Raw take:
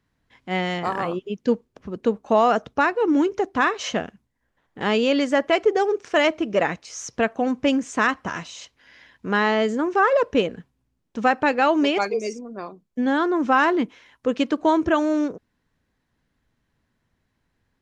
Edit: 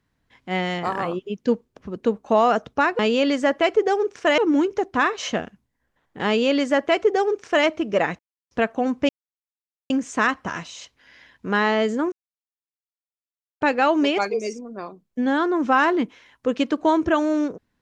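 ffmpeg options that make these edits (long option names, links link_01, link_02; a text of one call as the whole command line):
ffmpeg -i in.wav -filter_complex "[0:a]asplit=8[link_01][link_02][link_03][link_04][link_05][link_06][link_07][link_08];[link_01]atrim=end=2.992[link_09];[link_02]atrim=start=4.878:end=6.272[link_10];[link_03]atrim=start=2.988:end=6.8,asetpts=PTS-STARTPTS,afade=type=out:start_time=3.808:duration=0.004:curve=hsin[link_11];[link_04]atrim=start=6.8:end=7.12,asetpts=PTS-STARTPTS,volume=0[link_12];[link_05]atrim=start=7.12:end=7.7,asetpts=PTS-STARTPTS,afade=type=in:duration=0.004:curve=hsin,afade=type=out:start_time=0.576:duration=0.004:curve=hsin,apad=pad_dur=0.81[link_13];[link_06]atrim=start=7.7:end=9.92,asetpts=PTS-STARTPTS,afade=type=in:duration=0.004:curve=hsin,afade=type=out:start_time=2.216:duration=0.004:curve=hsin[link_14];[link_07]atrim=start=9.92:end=11.41,asetpts=PTS-STARTPTS,volume=0[link_15];[link_08]atrim=start=11.41,asetpts=PTS-STARTPTS,afade=type=in:duration=0.004:curve=hsin[link_16];[link_09][link_10]acrossfade=duration=0.004:curve1=hsin:curve2=hsin[link_17];[link_11][link_12][link_13][link_14][link_15][link_16]concat=n=6:v=0:a=1[link_18];[link_17][link_18]acrossfade=duration=0.004:curve1=hsin:curve2=hsin" out.wav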